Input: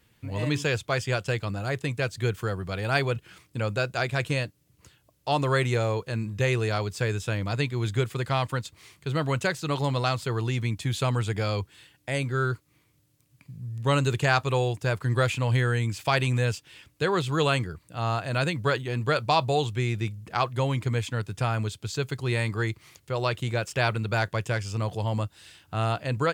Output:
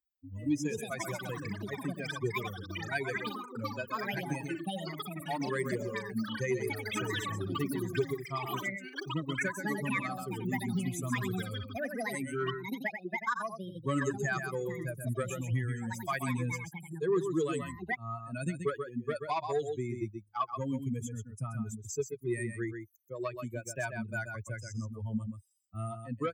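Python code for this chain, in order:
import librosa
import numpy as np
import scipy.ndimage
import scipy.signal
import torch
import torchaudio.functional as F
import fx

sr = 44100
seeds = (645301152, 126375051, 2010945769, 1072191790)

p1 = fx.bin_expand(x, sr, power=3.0)
p2 = fx.curve_eq(p1, sr, hz=(160.0, 330.0, 1300.0, 4200.0, 6000.0), db=(0, 7, 3, -17, 4))
p3 = p2 + 10.0 ** (-8.0 / 20.0) * np.pad(p2, (int(130 * sr / 1000.0), 0))[:len(p2)]
p4 = fx.echo_pitch(p3, sr, ms=393, semitones=7, count=3, db_per_echo=-6.0)
p5 = fx.rider(p4, sr, range_db=4, speed_s=0.5)
p6 = p4 + (p5 * librosa.db_to_amplitude(2.0))
p7 = 10.0 ** (-9.5 / 20.0) * np.tanh(p6 / 10.0 ** (-9.5 / 20.0))
p8 = fx.band_shelf(p7, sr, hz=680.0, db=-11.0, octaves=1.2)
p9 = fx.notch_comb(p8, sr, f0_hz=1400.0)
p10 = fx.band_squash(p9, sr, depth_pct=40)
y = p10 * librosa.db_to_amplitude(-4.5)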